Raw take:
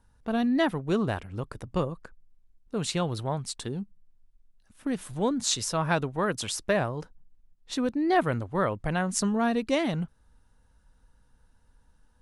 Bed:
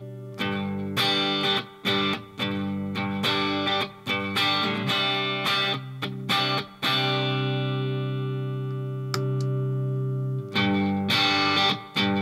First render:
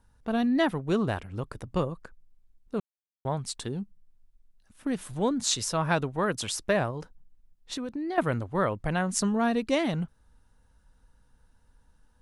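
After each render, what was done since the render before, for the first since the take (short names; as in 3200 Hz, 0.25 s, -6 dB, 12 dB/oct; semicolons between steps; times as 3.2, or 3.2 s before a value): 2.8–3.25 mute; 6.9–8.18 compressor, threshold -30 dBFS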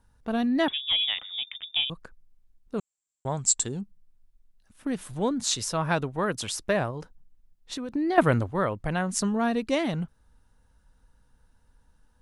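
0.68–1.9 inverted band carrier 3600 Hz; 2.78–3.81 synth low-pass 7500 Hz, resonance Q 16; 7.92–8.51 gain +6 dB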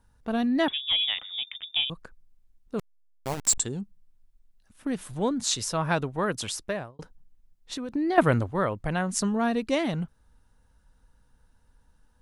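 2.79–3.58 level-crossing sampler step -27 dBFS; 6.48–6.99 fade out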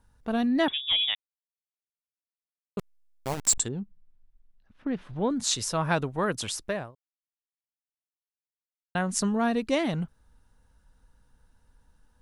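1.15–2.77 mute; 3.68–5.3 air absorption 260 m; 6.95–8.95 mute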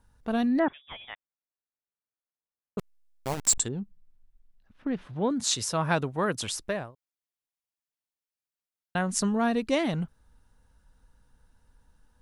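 0.59–2.78 inverse Chebyshev low-pass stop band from 9200 Hz, stop band 80 dB; 5.05–6.42 HPF 50 Hz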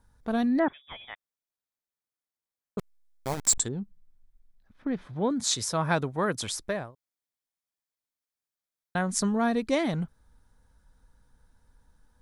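notch 2800 Hz, Q 7.7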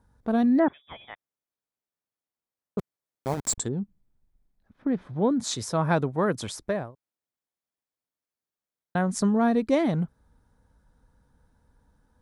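HPF 80 Hz 6 dB/oct; tilt shelf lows +5 dB, about 1300 Hz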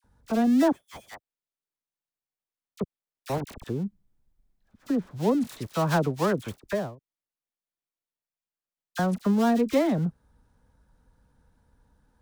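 switching dead time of 0.12 ms; dispersion lows, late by 42 ms, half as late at 1300 Hz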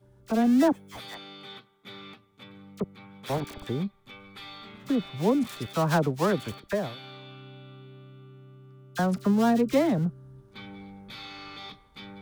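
add bed -20.5 dB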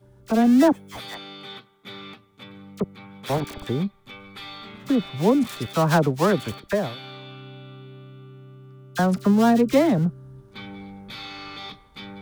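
gain +5 dB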